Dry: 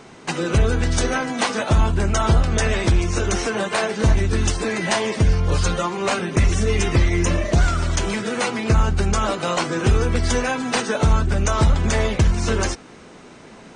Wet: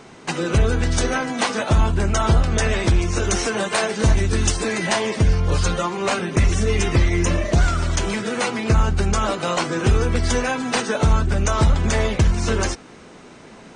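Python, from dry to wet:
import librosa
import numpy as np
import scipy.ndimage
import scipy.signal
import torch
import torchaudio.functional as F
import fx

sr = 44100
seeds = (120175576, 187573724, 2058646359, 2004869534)

y = fx.high_shelf(x, sr, hz=5000.0, db=6.0, at=(3.22, 4.87))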